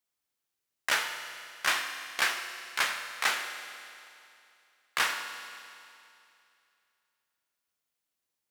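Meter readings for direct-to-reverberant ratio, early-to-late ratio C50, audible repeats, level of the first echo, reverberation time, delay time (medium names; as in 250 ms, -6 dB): 6.0 dB, 7.5 dB, no echo, no echo, 2.6 s, no echo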